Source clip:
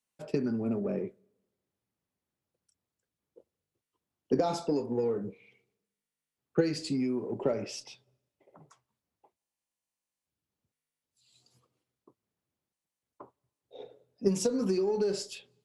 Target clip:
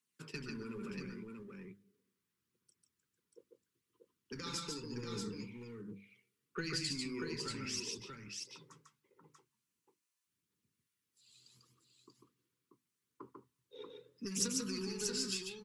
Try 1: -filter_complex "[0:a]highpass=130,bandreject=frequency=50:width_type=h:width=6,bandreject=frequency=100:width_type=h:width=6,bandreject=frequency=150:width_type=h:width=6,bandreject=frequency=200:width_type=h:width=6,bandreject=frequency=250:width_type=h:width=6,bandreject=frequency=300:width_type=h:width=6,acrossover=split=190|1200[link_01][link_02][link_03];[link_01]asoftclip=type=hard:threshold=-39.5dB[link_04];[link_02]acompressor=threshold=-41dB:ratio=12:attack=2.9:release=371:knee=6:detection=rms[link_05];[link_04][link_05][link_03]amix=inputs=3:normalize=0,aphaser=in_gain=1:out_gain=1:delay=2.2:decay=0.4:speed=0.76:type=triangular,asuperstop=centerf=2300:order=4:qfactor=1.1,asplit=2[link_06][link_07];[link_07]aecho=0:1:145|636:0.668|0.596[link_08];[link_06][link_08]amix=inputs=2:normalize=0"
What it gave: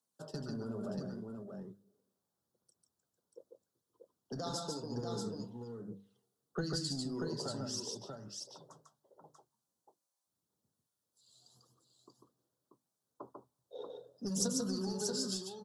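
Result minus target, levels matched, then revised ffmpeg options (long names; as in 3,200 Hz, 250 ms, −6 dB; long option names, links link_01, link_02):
2,000 Hz band −8.5 dB; hard clipping: distortion −7 dB
-filter_complex "[0:a]highpass=130,bandreject=frequency=50:width_type=h:width=6,bandreject=frequency=100:width_type=h:width=6,bandreject=frequency=150:width_type=h:width=6,bandreject=frequency=200:width_type=h:width=6,bandreject=frequency=250:width_type=h:width=6,bandreject=frequency=300:width_type=h:width=6,acrossover=split=190|1200[link_01][link_02][link_03];[link_01]asoftclip=type=hard:threshold=-48.5dB[link_04];[link_02]acompressor=threshold=-41dB:ratio=12:attack=2.9:release=371:knee=6:detection=rms[link_05];[link_04][link_05][link_03]amix=inputs=3:normalize=0,aphaser=in_gain=1:out_gain=1:delay=2.2:decay=0.4:speed=0.76:type=triangular,asuperstop=centerf=670:order=4:qfactor=1.1,asplit=2[link_06][link_07];[link_07]aecho=0:1:145|636:0.668|0.596[link_08];[link_06][link_08]amix=inputs=2:normalize=0"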